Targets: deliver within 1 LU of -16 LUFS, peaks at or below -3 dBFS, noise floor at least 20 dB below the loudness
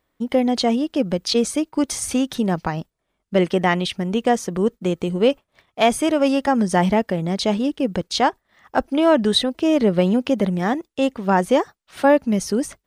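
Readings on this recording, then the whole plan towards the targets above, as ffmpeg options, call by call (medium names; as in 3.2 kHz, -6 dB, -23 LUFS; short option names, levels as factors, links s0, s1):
loudness -20.0 LUFS; peak level -5.0 dBFS; loudness target -16.0 LUFS
-> -af "volume=1.58,alimiter=limit=0.708:level=0:latency=1"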